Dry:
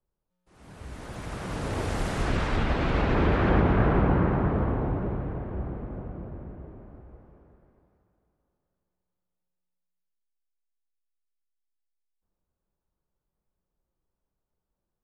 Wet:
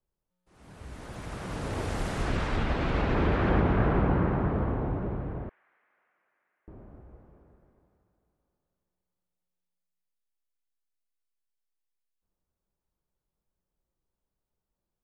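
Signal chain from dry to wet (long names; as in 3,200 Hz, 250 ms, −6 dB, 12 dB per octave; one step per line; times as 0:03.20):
0:05.49–0:06.68: four-pole ladder band-pass 2,300 Hz, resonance 45%
level −2.5 dB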